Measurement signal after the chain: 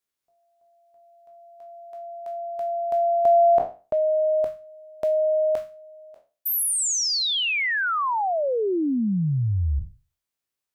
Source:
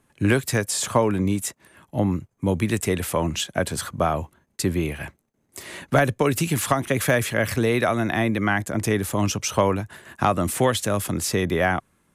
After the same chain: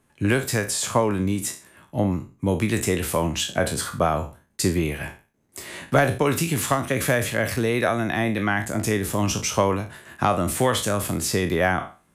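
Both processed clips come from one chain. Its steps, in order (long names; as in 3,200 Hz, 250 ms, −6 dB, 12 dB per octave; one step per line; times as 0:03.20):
peak hold with a decay on every bin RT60 0.34 s
in parallel at +2 dB: speech leveller within 5 dB 2 s
on the sum: level −8.5 dB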